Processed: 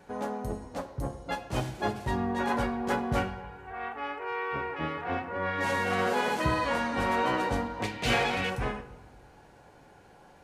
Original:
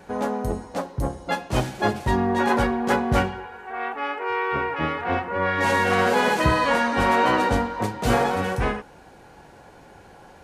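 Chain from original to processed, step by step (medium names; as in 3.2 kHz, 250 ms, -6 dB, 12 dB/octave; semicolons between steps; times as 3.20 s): 7.82–8.50 s: FFT filter 1.3 kHz 0 dB, 2.4 kHz +14 dB, 13 kHz -2 dB; simulated room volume 830 m³, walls mixed, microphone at 0.36 m; trim -8 dB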